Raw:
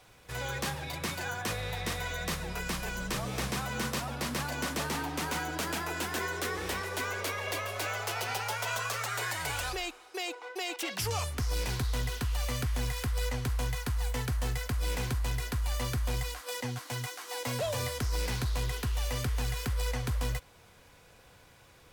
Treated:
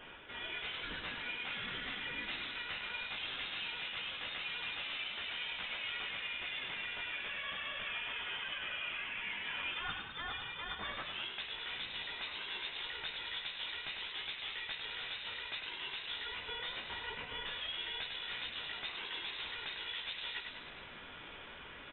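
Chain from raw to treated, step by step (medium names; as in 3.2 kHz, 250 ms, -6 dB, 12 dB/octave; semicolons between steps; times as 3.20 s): one-sided wavefolder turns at -30.5 dBFS; low-pass that closes with the level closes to 1.7 kHz, closed at -30.5 dBFS; steep high-pass 160 Hz; tilt EQ +3.5 dB/octave; reverse; compression 10:1, threshold -46 dBFS, peak gain reduction 14 dB; reverse; chorus voices 4, 0.38 Hz, delay 16 ms, depth 4.6 ms; frequency-shifting echo 101 ms, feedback 60%, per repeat -36 Hz, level -6 dB; frequency inversion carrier 3.9 kHz; trim +9.5 dB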